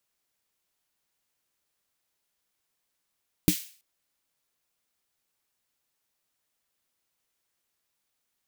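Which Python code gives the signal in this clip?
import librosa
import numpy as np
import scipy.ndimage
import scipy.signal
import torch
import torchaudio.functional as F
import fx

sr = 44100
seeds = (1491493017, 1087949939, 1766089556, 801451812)

y = fx.drum_snare(sr, seeds[0], length_s=0.33, hz=180.0, second_hz=300.0, noise_db=-10.0, noise_from_hz=2200.0, decay_s=0.09, noise_decay_s=0.44)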